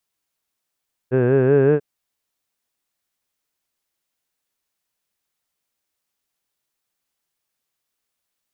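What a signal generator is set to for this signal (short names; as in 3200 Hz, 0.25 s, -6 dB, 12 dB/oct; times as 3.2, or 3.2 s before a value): formant vowel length 0.69 s, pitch 123 Hz, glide +3 st, F1 430 Hz, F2 1600 Hz, F3 2600 Hz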